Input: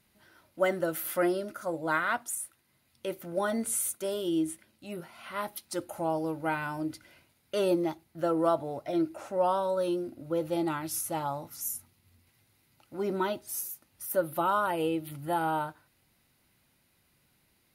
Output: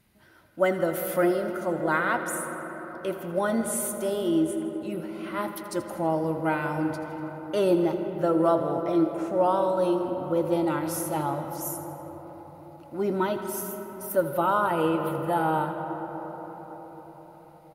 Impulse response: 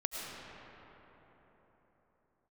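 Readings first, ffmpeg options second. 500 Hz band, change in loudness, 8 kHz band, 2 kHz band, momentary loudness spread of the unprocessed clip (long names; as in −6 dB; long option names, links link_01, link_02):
+5.0 dB, +4.0 dB, 0.0 dB, +3.5 dB, 11 LU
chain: -filter_complex "[0:a]lowshelf=frequency=260:gain=4,aecho=1:1:81|162|243|324|405|486:0.188|0.111|0.0656|0.0387|0.0228|0.0135,asplit=2[link_01][link_02];[1:a]atrim=start_sample=2205,asetrate=33516,aresample=44100,lowpass=3100[link_03];[link_02][link_03]afir=irnorm=-1:irlink=0,volume=-7.5dB[link_04];[link_01][link_04]amix=inputs=2:normalize=0"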